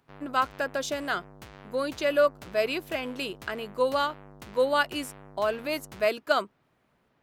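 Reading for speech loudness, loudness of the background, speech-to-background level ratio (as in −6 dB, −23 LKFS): −28.5 LKFS, −48.5 LKFS, 20.0 dB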